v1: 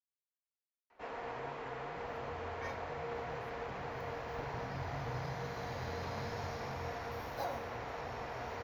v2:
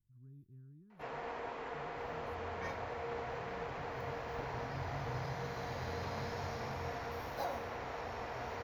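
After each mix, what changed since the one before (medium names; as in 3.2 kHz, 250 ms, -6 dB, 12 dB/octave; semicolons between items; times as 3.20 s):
speech: entry -1.15 s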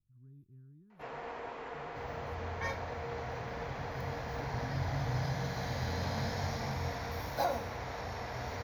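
second sound +8.0 dB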